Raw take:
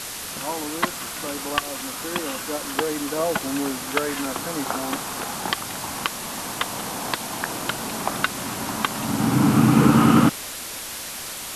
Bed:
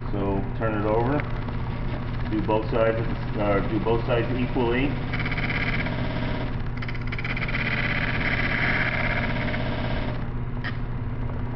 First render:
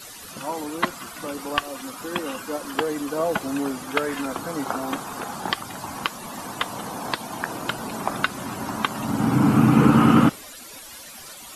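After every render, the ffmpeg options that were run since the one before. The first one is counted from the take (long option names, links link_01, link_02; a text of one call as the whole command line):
ffmpeg -i in.wav -af "afftdn=noise_reduction=14:noise_floor=-34" out.wav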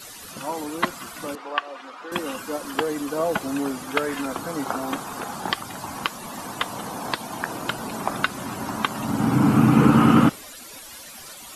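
ffmpeg -i in.wav -filter_complex "[0:a]asettb=1/sr,asplit=3[link_01][link_02][link_03];[link_01]atrim=end=1.354[link_04];[link_02]atrim=start=1.35:end=2.12,asetpts=PTS-STARTPTS,afade=type=in:duration=0.004:curve=qsin,afade=type=out:start_time=0.766:duration=0.004:curve=qsin,highpass=490,lowpass=2800[link_05];[link_03]atrim=start=2.116[link_06];[link_04][link_05]acrossfade=duration=0.004:curve1=hsin:curve2=qsin[link_07];[link_07][link_06]acrossfade=duration=0.004:curve1=qsin:curve2=hsin" out.wav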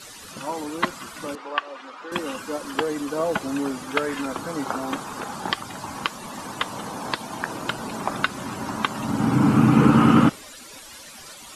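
ffmpeg -i in.wav -af "lowpass=9700,bandreject=frequency=710:width=15" out.wav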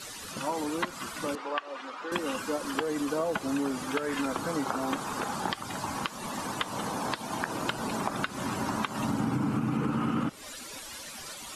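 ffmpeg -i in.wav -af "alimiter=limit=-10.5dB:level=0:latency=1:release=204,acompressor=threshold=-26dB:ratio=6" out.wav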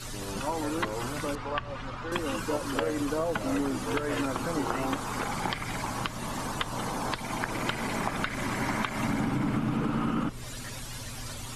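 ffmpeg -i in.wav -i bed.wav -filter_complex "[1:a]volume=-13dB[link_01];[0:a][link_01]amix=inputs=2:normalize=0" out.wav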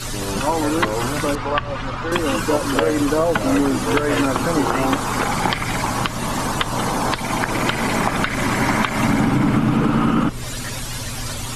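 ffmpeg -i in.wav -af "volume=11.5dB,alimiter=limit=-3dB:level=0:latency=1" out.wav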